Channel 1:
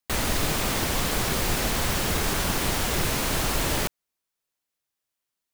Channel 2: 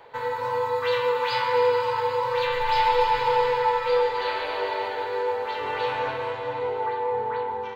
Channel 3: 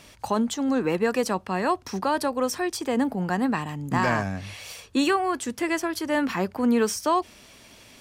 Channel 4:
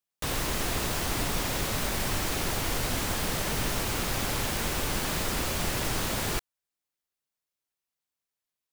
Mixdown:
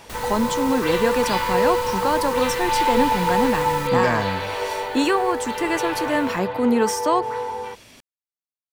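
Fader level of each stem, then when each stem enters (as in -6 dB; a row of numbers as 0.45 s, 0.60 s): -8.5 dB, +1.0 dB, +2.0 dB, -16.5 dB; 0.00 s, 0.00 s, 0.00 s, 0.00 s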